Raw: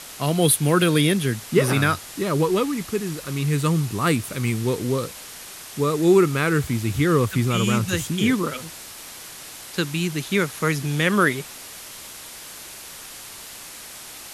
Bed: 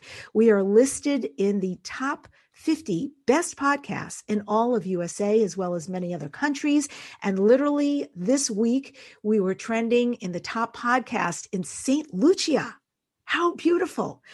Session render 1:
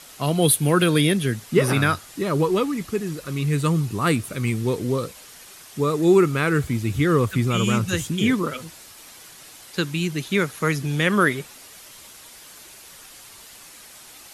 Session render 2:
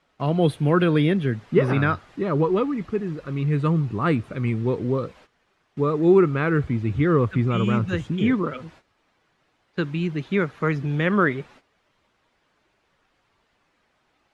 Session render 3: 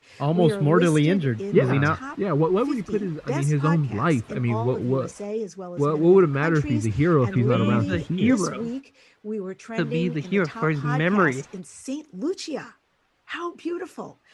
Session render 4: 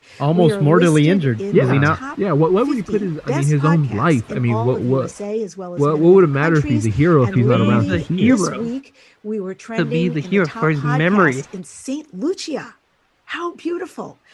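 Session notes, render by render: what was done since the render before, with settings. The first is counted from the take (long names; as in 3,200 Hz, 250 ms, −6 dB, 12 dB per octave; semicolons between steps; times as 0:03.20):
broadband denoise 7 dB, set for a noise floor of −39 dBFS
Bessel low-pass filter 1,700 Hz, order 2; noise gate −48 dBFS, range −15 dB
mix in bed −8 dB
level +6 dB; brickwall limiter −2 dBFS, peak gain reduction 2.5 dB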